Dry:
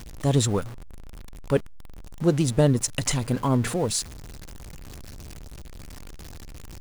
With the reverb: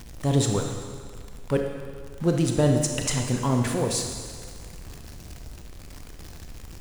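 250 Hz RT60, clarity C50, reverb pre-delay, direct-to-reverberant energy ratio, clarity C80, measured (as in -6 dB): 1.8 s, 4.5 dB, 24 ms, 3.0 dB, 6.0 dB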